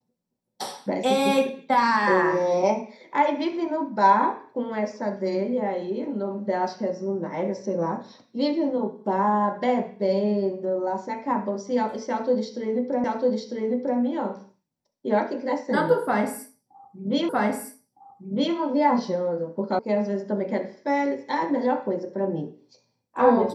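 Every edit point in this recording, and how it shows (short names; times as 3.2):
13.04 repeat of the last 0.95 s
17.29 repeat of the last 1.26 s
19.79 sound cut off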